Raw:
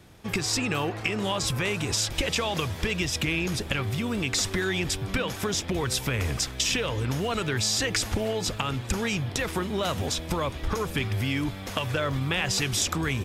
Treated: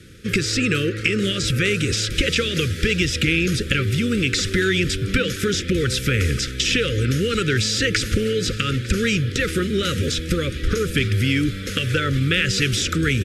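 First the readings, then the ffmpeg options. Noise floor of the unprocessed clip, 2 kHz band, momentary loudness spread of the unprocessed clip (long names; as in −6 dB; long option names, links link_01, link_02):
−37 dBFS, +8.0 dB, 4 LU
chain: -filter_complex "[0:a]lowpass=frequency=12000:width=0.5412,lowpass=frequency=12000:width=1.3066,acrossover=split=4400[link_01][link_02];[link_02]acompressor=threshold=-35dB:ratio=4:attack=1:release=60[link_03];[link_01][link_03]amix=inputs=2:normalize=0,asuperstop=centerf=830:order=12:qfactor=1.1,aecho=1:1:901:0.0944,volume=8dB"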